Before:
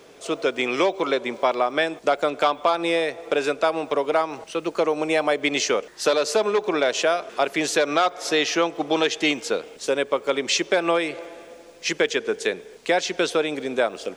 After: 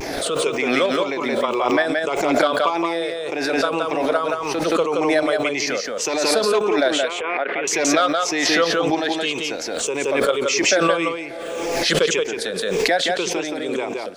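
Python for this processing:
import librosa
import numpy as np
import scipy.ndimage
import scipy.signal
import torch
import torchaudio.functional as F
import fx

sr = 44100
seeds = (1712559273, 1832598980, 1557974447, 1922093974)

p1 = fx.spec_ripple(x, sr, per_octave=0.73, drift_hz=-1.8, depth_db=12)
p2 = fx.level_steps(p1, sr, step_db=16)
p3 = p1 + (p2 * librosa.db_to_amplitude(-1.0))
p4 = fx.cabinet(p3, sr, low_hz=330.0, low_slope=12, high_hz=2400.0, hz=(630.0, 1300.0, 2100.0), db=(-9, -5, 8), at=(7.04, 7.68))
p5 = fx.vibrato(p4, sr, rate_hz=0.34, depth_cents=19.0)
p6 = p5 + fx.echo_single(p5, sr, ms=173, db=-3.5, dry=0)
p7 = fx.pre_swell(p6, sr, db_per_s=25.0)
y = p7 * librosa.db_to_amplitude(-6.5)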